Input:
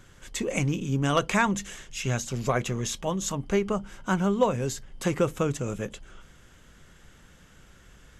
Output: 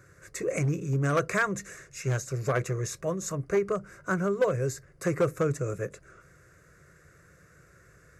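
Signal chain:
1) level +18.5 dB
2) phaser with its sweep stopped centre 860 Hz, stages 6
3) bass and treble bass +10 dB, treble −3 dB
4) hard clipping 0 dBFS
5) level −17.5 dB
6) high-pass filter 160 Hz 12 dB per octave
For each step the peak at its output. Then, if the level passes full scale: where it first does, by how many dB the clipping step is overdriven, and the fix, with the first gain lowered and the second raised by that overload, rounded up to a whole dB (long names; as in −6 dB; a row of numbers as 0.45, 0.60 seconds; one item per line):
+7.5, +7.0, +8.0, 0.0, −17.5, −14.0 dBFS
step 1, 8.0 dB
step 1 +10.5 dB, step 5 −9.5 dB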